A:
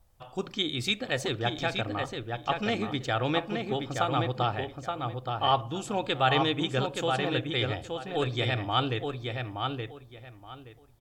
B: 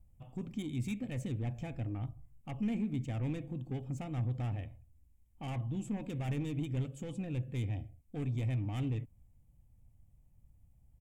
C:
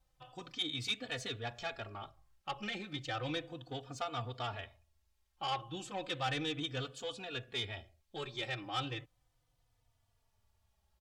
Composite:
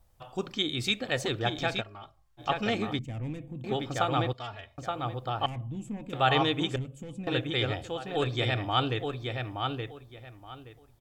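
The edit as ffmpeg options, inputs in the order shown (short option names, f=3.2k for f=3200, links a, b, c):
-filter_complex "[2:a]asplit=2[a][b];[1:a]asplit=3[c][d][e];[0:a]asplit=6[f][g][h][i][j][k];[f]atrim=end=1.83[l];[a]atrim=start=1.79:end=2.41[m];[g]atrim=start=2.37:end=2.992[n];[c]atrim=start=2.988:end=3.642[o];[h]atrim=start=3.638:end=4.332[p];[b]atrim=start=4.328:end=4.782[q];[i]atrim=start=4.778:end=5.462[r];[d]atrim=start=5.458:end=6.132[s];[j]atrim=start=6.128:end=6.762[t];[e]atrim=start=6.758:end=7.272[u];[k]atrim=start=7.268[v];[l][m]acrossfade=d=0.04:c1=tri:c2=tri[w];[w][n]acrossfade=d=0.04:c1=tri:c2=tri[x];[x][o]acrossfade=d=0.004:c1=hsin:c2=hsin[y];[y][p]acrossfade=d=0.004:c1=hsin:c2=hsin[z];[z][q]acrossfade=d=0.004:c1=hsin:c2=hsin[aa];[aa][r]acrossfade=d=0.004:c1=hsin:c2=hsin[ab];[ab][s]acrossfade=d=0.004:c1=hsin:c2=hsin[ac];[ac][t]acrossfade=d=0.004:c1=hsin:c2=hsin[ad];[ad][u]acrossfade=d=0.004:c1=hsin:c2=hsin[ae];[ae][v]acrossfade=d=0.004:c1=hsin:c2=hsin"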